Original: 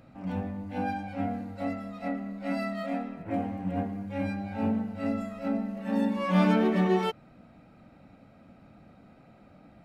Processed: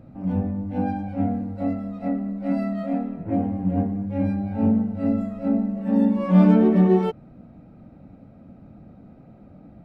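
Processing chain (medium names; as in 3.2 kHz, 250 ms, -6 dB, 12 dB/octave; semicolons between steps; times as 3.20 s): tilt shelf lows +9 dB, about 860 Hz; trim +1 dB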